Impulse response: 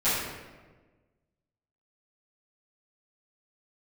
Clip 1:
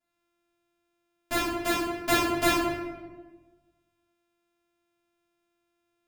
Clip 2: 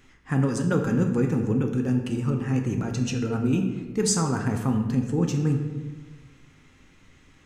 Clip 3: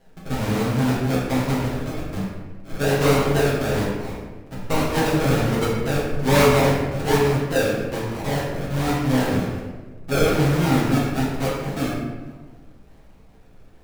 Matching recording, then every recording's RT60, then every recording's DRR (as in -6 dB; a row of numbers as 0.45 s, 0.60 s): 1; 1.3 s, 1.3 s, 1.3 s; -15.0 dB, 2.5 dB, -7.0 dB